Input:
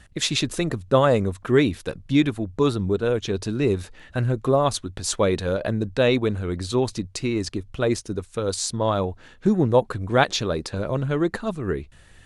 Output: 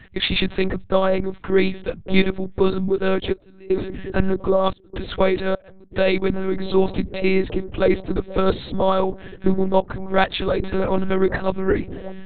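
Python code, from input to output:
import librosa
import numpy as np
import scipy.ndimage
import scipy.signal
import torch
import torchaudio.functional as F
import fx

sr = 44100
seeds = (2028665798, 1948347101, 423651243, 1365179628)

y = fx.peak_eq(x, sr, hz=2100.0, db=3.5, octaves=0.29)
y = fx.echo_wet_lowpass(y, sr, ms=1153, feedback_pct=54, hz=660.0, wet_db=-15.5)
y = fx.lpc_monotone(y, sr, seeds[0], pitch_hz=190.0, order=8)
y = fx.rider(y, sr, range_db=5, speed_s=0.5)
y = fx.step_gate(y, sr, bpm=73, pattern='x.xxx..xxxx', floor_db=-24.0, edge_ms=4.5, at=(3.32, 5.91), fade=0.02)
y = F.gain(torch.from_numpy(y), 3.0).numpy()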